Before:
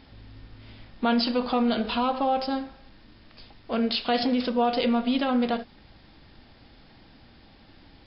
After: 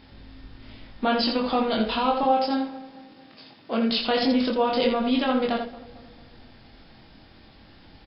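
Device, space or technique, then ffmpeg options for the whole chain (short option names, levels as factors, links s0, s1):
slapback doubling: -filter_complex "[0:a]asettb=1/sr,asplit=3[s0][s1][s2];[s0]atrim=end=2.234[s3];[s1]atrim=start=2.23:end=3.9,asetpts=PTS-STARTPTS,afade=t=in:d=0.004:c=qsin,afade=t=out:st=1.666:d=0.004:c=qsin,highpass=f=130:w=0.5412,highpass=f=130:w=1.3066[s4];[s2]atrim=start=3.896[s5];[s3][s4]acrossfade=d=0.004:c1=hsin:c2=qsin[s6];[s6][s5]acrossfade=d=0.004:c1=qsin:c2=hsin,asplit=2[s7][s8];[s8]adelay=224,lowpass=f=1400:p=1,volume=0.126,asplit=2[s9][s10];[s10]adelay=224,lowpass=f=1400:p=1,volume=0.54,asplit=2[s11][s12];[s12]adelay=224,lowpass=f=1400:p=1,volume=0.54,asplit=2[s13][s14];[s14]adelay=224,lowpass=f=1400:p=1,volume=0.54,asplit=2[s15][s16];[s16]adelay=224,lowpass=f=1400:p=1,volume=0.54[s17];[s7][s9][s11][s13][s15][s17]amix=inputs=6:normalize=0,asplit=3[s18][s19][s20];[s19]adelay=23,volume=0.708[s21];[s20]adelay=83,volume=0.473[s22];[s18][s21][s22]amix=inputs=3:normalize=0"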